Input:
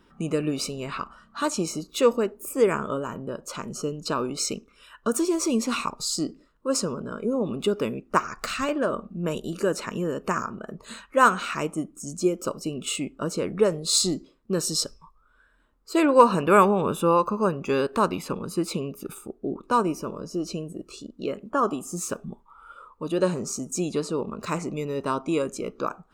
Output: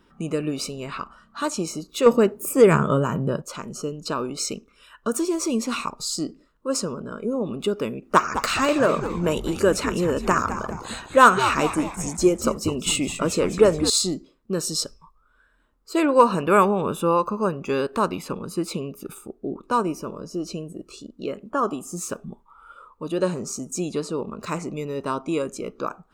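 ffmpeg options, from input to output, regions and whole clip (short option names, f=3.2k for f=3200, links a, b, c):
-filter_complex "[0:a]asettb=1/sr,asplit=3[a][b][c];[a]atrim=end=2.064[d];[b]atrim=start=2.06:end=3.42,asetpts=PTS-STARTPTS,afade=t=in:d=0.004:c=qsin,afade=t=out:st=1.356:d=0.004:c=qsin,highpass=50,equalizer=f=150:t=o:w=0.52:g=11.5,acontrast=73[e];[c]atrim=start=3.416[f];[d][e]acrossfade=d=0.004:c1=hsin:c2=qsin[g];[g][f]acrossfade=d=0.004:c1=qsin:c2=hsin,asettb=1/sr,asplit=3[h][i][j];[h]atrim=end=8.024[k];[i]atrim=start=8.02:end=13.9,asetpts=PTS-STARTPTS,afade=t=in:d=0.004:c=qsin,afade=t=out:st=5.876:d=0.004:c=qsin,lowshelf=f=150:g=-6.5,acontrast=64,asplit=6[l][m][n][o][p][q];[m]adelay=207,afreqshift=-130,volume=-10dB[r];[n]adelay=414,afreqshift=-260,volume=-16.7dB[s];[o]adelay=621,afreqshift=-390,volume=-23.5dB[t];[p]adelay=828,afreqshift=-520,volume=-30.2dB[u];[q]adelay=1035,afreqshift=-650,volume=-37dB[v];[l][r][s][t][u][v]amix=inputs=6:normalize=0,atrim=end_sample=259308[w];[j]atrim=start=13.896[x];[k][w]acrossfade=d=0.004:c1=hsin:c2=qsin[y];[y][x]acrossfade=d=0.004:c1=qsin:c2=hsin"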